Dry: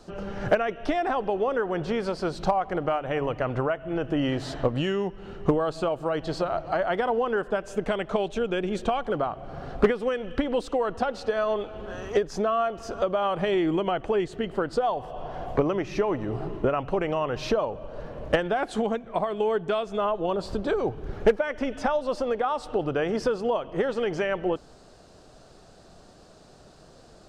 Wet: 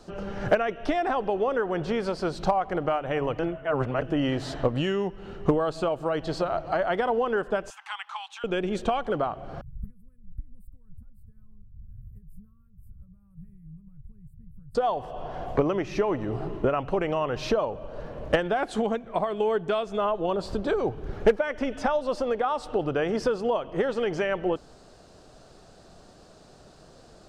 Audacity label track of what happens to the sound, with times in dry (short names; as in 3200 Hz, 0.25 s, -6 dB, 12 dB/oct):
3.390000	4.020000	reverse
7.700000	8.440000	rippled Chebyshev high-pass 810 Hz, ripple 3 dB
9.610000	14.750000	inverse Chebyshev band-stop 320–6400 Hz, stop band 50 dB